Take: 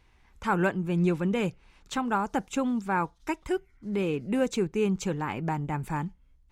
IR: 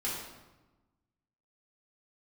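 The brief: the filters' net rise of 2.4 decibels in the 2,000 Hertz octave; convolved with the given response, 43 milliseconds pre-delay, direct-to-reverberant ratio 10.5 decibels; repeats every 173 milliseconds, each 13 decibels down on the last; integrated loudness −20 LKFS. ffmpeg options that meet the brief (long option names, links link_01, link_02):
-filter_complex "[0:a]equalizer=frequency=2000:width_type=o:gain=3.5,aecho=1:1:173|346|519:0.224|0.0493|0.0108,asplit=2[link_01][link_02];[1:a]atrim=start_sample=2205,adelay=43[link_03];[link_02][link_03]afir=irnorm=-1:irlink=0,volume=-15.5dB[link_04];[link_01][link_04]amix=inputs=2:normalize=0,volume=8.5dB"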